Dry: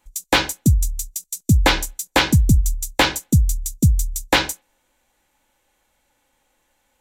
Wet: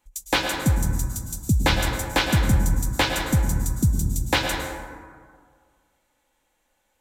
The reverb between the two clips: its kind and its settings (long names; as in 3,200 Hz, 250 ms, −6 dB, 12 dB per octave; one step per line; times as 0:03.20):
dense smooth reverb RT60 1.9 s, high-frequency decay 0.4×, pre-delay 95 ms, DRR 3 dB
level −5.5 dB